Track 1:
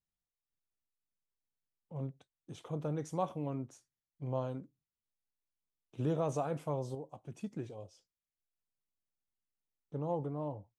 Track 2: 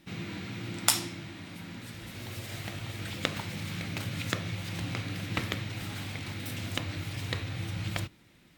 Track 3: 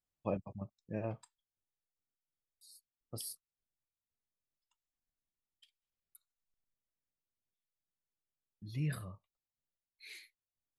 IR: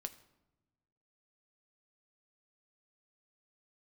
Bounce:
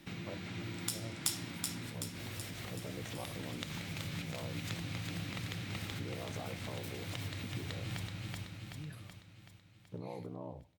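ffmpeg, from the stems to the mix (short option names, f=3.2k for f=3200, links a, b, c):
-filter_complex "[0:a]alimiter=level_in=6.5dB:limit=-24dB:level=0:latency=1,volume=-6.5dB,aeval=exprs='val(0)*sin(2*PI*31*n/s)':c=same,volume=3dB,asplit=3[a][b][c];[b]volume=-14dB[d];[1:a]acrossover=split=200|3000[e][f][g];[f]acompressor=threshold=-38dB:ratio=6[h];[e][h][g]amix=inputs=3:normalize=0,volume=1.5dB,asplit=3[i][j][k];[j]volume=-18.5dB[l];[k]volume=-10.5dB[m];[2:a]volume=-11dB[n];[c]apad=whole_len=378267[o];[i][o]sidechaincompress=threshold=-53dB:ratio=8:attack=16:release=101[p];[a][p]amix=inputs=2:normalize=0,acompressor=threshold=-44dB:ratio=4,volume=0dB[q];[3:a]atrim=start_sample=2205[r];[d][l]amix=inputs=2:normalize=0[s];[s][r]afir=irnorm=-1:irlink=0[t];[m]aecho=0:1:378|756|1134|1512|1890|2268|2646|3024|3402:1|0.57|0.325|0.185|0.106|0.0602|0.0343|0.0195|0.0111[u];[n][q][t][u]amix=inputs=4:normalize=0"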